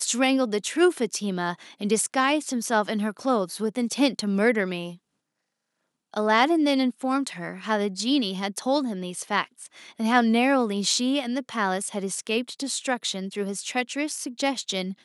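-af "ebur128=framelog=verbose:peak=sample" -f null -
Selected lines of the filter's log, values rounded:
Integrated loudness:
  I:         -25.0 LUFS
  Threshold: -35.2 LUFS
Loudness range:
  LRA:         3.0 LU
  Threshold: -45.4 LUFS
  LRA low:   -27.3 LUFS
  LRA high:  -24.4 LUFS
Sample peak:
  Peak:       -4.8 dBFS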